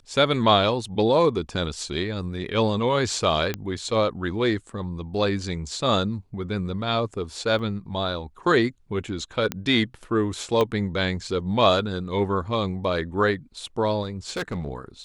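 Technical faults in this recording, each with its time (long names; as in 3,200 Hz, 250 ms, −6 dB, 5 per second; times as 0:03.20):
0:03.54: click −12 dBFS
0:07.59: drop-out 3.5 ms
0:09.52: click −11 dBFS
0:10.61: click −11 dBFS
0:14.02–0:14.69: clipping −24.5 dBFS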